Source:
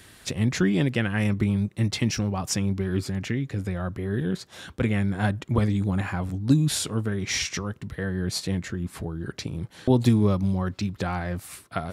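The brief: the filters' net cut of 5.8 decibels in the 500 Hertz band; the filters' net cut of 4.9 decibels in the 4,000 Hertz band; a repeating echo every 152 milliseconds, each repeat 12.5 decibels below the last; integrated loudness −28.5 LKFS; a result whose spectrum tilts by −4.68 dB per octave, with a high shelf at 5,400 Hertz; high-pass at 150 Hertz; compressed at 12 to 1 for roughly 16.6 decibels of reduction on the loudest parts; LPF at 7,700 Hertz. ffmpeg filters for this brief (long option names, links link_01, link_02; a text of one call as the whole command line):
ffmpeg -i in.wav -af "highpass=150,lowpass=7700,equalizer=frequency=500:width_type=o:gain=-8,equalizer=frequency=4000:width_type=o:gain=-8,highshelf=frequency=5400:gain=4,acompressor=threshold=-34dB:ratio=12,aecho=1:1:152|304|456:0.237|0.0569|0.0137,volume=10.5dB" out.wav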